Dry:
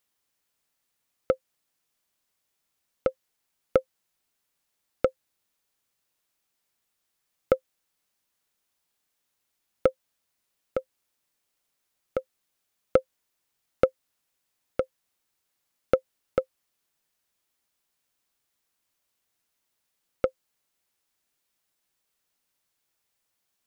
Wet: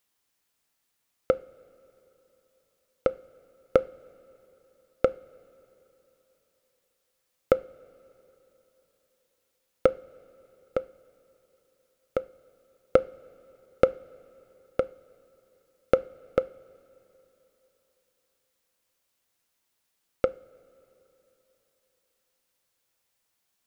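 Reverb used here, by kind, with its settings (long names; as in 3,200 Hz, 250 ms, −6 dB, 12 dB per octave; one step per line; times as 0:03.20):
coupled-rooms reverb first 0.41 s, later 3.6 s, from −16 dB, DRR 15.5 dB
level +1.5 dB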